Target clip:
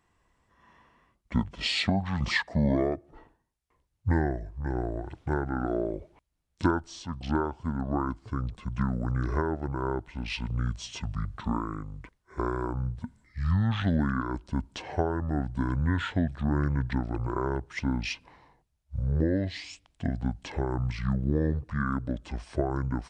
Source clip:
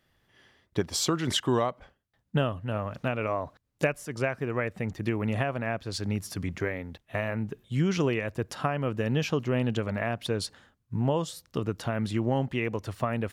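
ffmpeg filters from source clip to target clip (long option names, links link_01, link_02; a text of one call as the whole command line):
ffmpeg -i in.wav -af "asetrate=25442,aresample=44100" out.wav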